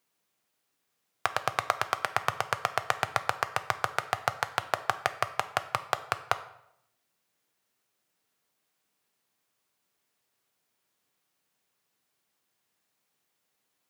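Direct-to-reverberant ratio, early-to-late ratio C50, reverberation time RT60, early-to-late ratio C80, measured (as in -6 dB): 10.0 dB, 14.5 dB, 0.75 s, 16.5 dB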